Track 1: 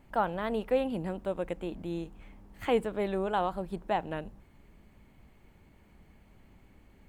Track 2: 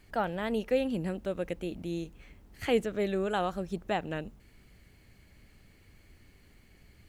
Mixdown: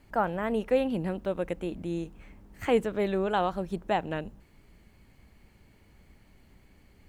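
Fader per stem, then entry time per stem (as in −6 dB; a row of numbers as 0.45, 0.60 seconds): −2.0, −4.0 decibels; 0.00, 0.00 seconds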